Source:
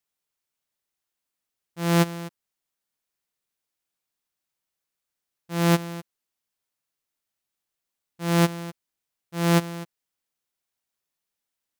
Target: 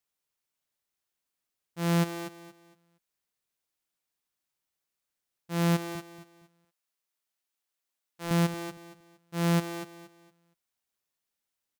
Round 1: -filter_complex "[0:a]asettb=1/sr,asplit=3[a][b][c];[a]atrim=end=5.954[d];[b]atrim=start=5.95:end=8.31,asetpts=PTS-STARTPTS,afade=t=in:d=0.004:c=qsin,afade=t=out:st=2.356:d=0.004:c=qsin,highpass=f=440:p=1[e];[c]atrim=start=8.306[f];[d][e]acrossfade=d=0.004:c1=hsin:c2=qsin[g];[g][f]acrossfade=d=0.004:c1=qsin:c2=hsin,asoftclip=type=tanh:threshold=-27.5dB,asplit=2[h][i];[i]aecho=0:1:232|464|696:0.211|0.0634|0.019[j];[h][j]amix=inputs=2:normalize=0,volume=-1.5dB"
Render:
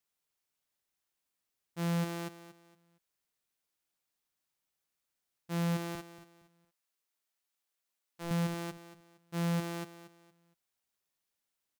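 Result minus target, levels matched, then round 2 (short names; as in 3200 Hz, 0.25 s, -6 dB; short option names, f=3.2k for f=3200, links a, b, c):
soft clip: distortion +8 dB
-filter_complex "[0:a]asettb=1/sr,asplit=3[a][b][c];[a]atrim=end=5.954[d];[b]atrim=start=5.95:end=8.31,asetpts=PTS-STARTPTS,afade=t=in:d=0.004:c=qsin,afade=t=out:st=2.356:d=0.004:c=qsin,highpass=f=440:p=1[e];[c]atrim=start=8.306[f];[d][e]acrossfade=d=0.004:c1=hsin:c2=qsin[g];[g][f]acrossfade=d=0.004:c1=qsin:c2=hsin,asoftclip=type=tanh:threshold=-18.5dB,asplit=2[h][i];[i]aecho=0:1:232|464|696:0.211|0.0634|0.019[j];[h][j]amix=inputs=2:normalize=0,volume=-1.5dB"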